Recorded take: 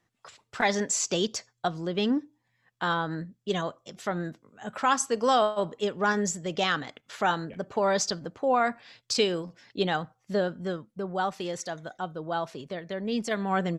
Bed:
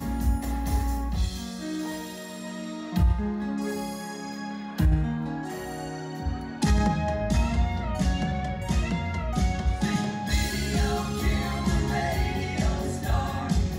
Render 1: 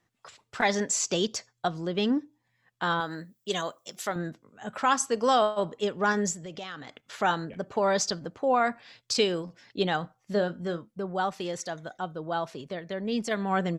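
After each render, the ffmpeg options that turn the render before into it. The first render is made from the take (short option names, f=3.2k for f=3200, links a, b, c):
-filter_complex "[0:a]asettb=1/sr,asplit=3[a][b][c];[a]atrim=end=3.004[d];[b]atrim=start=3:end=4.16,asetpts=PTS-STARTPTS,afade=t=in:d=0.004:c=qsin,afade=t=out:st=1.156:d=0.004:c=qsin,aemphasis=mode=production:type=bsi[e];[c]atrim=start=4.156[f];[d][e]acrossfade=d=0.004:c1=hsin:c2=qsin[g];[g][f]acrossfade=d=0.004:c1=qsin:c2=hsin,asettb=1/sr,asplit=3[h][i][j];[h]atrim=end=6.334[k];[i]atrim=start=6.33:end=7.03,asetpts=PTS-STARTPTS,afade=t=in:d=0.004:c=qsin,afade=t=out:st=0.696:d=0.004:c=qsin,acompressor=threshold=-39dB:ratio=3:attack=3.2:release=140:knee=1:detection=peak[l];[j]atrim=start=7.026[m];[k][l]acrossfade=d=0.004:c1=hsin:c2=qsin[n];[n][m]acrossfade=d=0.004:c1=qsin:c2=hsin,asettb=1/sr,asplit=3[o][p][q];[o]atrim=end=10.004[r];[p]atrim=start=10:end=10.89,asetpts=PTS-STARTPTS,afade=t=in:d=0.004:c=qsin,afade=t=out:st=0.886:d=0.004:c=qsin,asplit=2[s][t];[t]adelay=29,volume=-12.5dB[u];[s][u]amix=inputs=2:normalize=0,atrim=end_sample=39249[v];[q]atrim=start=10.886[w];[r][v]acrossfade=d=0.004:c1=hsin:c2=qsin[x];[x][w]acrossfade=d=0.004:c1=qsin:c2=hsin"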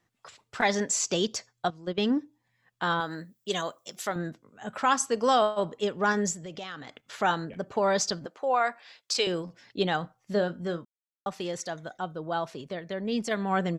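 -filter_complex "[0:a]asettb=1/sr,asplit=3[a][b][c];[a]atrim=end=1.704[d];[b]atrim=start=1.7:end=2.12,asetpts=PTS-STARTPTS,afade=t=in:d=0.004:c=qsin,afade=t=out:st=0.416:d=0.004:c=qsin,agate=range=-12dB:threshold=-31dB:ratio=16:release=100:detection=peak[e];[c]atrim=start=2.116[f];[d][e]acrossfade=d=0.004:c1=hsin:c2=qsin[g];[g][f]acrossfade=d=0.004:c1=qsin:c2=hsin,asettb=1/sr,asplit=3[h][i][j];[h]atrim=end=8.264[k];[i]atrim=start=8.26:end=9.27,asetpts=PTS-STARTPTS,afade=t=in:d=0.004:c=qsin,afade=t=out:st=1.006:d=0.004:c=qsin,highpass=490[l];[j]atrim=start=9.266[m];[k][l]acrossfade=d=0.004:c1=hsin:c2=qsin[n];[n][m]acrossfade=d=0.004:c1=qsin:c2=hsin,asplit=3[o][p][q];[o]atrim=end=10.85,asetpts=PTS-STARTPTS,afade=t=out:st=10.846:d=0.004:c=hsin[r];[p]atrim=start=10.85:end=11.26,asetpts=PTS-STARTPTS,volume=0[s];[q]atrim=start=11.26,asetpts=PTS-STARTPTS,afade=t=in:d=0.004:c=hsin[t];[r][s][t]concat=n=3:v=0:a=1"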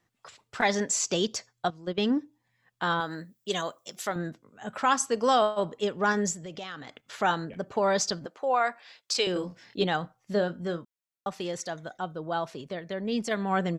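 -filter_complex "[0:a]asettb=1/sr,asplit=3[a][b][c];[a]atrim=end=9.334[d];[b]atrim=start=9.33:end=9.84,asetpts=PTS-STARTPTS,afade=t=in:d=0.004:c=qsin,afade=t=out:st=0.506:d=0.004:c=qsin,asplit=2[e][f];[f]adelay=27,volume=-3dB[g];[e][g]amix=inputs=2:normalize=0,atrim=end_sample=22491[h];[c]atrim=start=9.836[i];[d][h]acrossfade=d=0.004:c1=hsin:c2=qsin[j];[j][i]acrossfade=d=0.004:c1=qsin:c2=hsin"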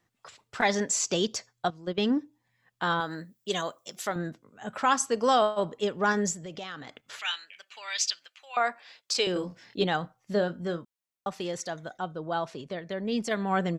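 -filter_complex "[0:a]asettb=1/sr,asplit=3[a][b][c];[a]atrim=end=7.194[d];[b]atrim=start=7.19:end=8.57,asetpts=PTS-STARTPTS,afade=t=in:d=0.004:c=qsin,afade=t=out:st=1.376:d=0.004:c=qsin,highpass=f=2.6k:t=q:w=3.1[e];[c]atrim=start=8.566[f];[d][e]acrossfade=d=0.004:c1=hsin:c2=qsin[g];[g][f]acrossfade=d=0.004:c1=qsin:c2=hsin,asettb=1/sr,asplit=3[h][i][j];[h]atrim=end=11.984[k];[i]atrim=start=11.98:end=12.89,asetpts=PTS-STARTPTS,afade=t=in:d=0.004:c=qsin,afade=t=out:st=0.906:d=0.004:c=qsin,lowpass=10k[l];[j]atrim=start=12.886[m];[k][l]acrossfade=d=0.004:c1=hsin:c2=qsin[n];[n][m]acrossfade=d=0.004:c1=qsin:c2=hsin"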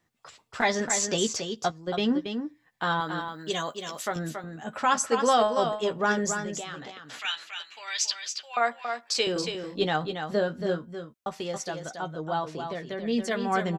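-filter_complex "[0:a]asplit=2[a][b];[b]adelay=13,volume=-8dB[c];[a][c]amix=inputs=2:normalize=0,asplit=2[d][e];[e]aecho=0:1:278:0.447[f];[d][f]amix=inputs=2:normalize=0"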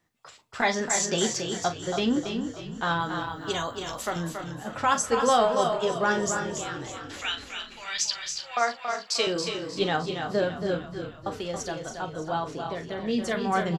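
-filter_complex "[0:a]asplit=2[a][b];[b]adelay=41,volume=-11dB[c];[a][c]amix=inputs=2:normalize=0,asplit=8[d][e][f][g][h][i][j][k];[e]adelay=307,afreqshift=-37,volume=-11dB[l];[f]adelay=614,afreqshift=-74,volume=-15.4dB[m];[g]adelay=921,afreqshift=-111,volume=-19.9dB[n];[h]adelay=1228,afreqshift=-148,volume=-24.3dB[o];[i]adelay=1535,afreqshift=-185,volume=-28.7dB[p];[j]adelay=1842,afreqshift=-222,volume=-33.2dB[q];[k]adelay=2149,afreqshift=-259,volume=-37.6dB[r];[d][l][m][n][o][p][q][r]amix=inputs=8:normalize=0"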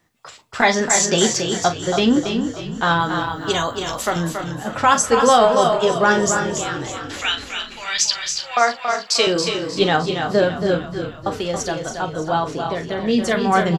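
-af "volume=9dB,alimiter=limit=-3dB:level=0:latency=1"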